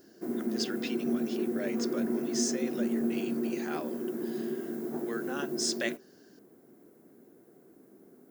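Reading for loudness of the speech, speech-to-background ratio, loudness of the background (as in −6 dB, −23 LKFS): −37.5 LKFS, −4.0 dB, −33.5 LKFS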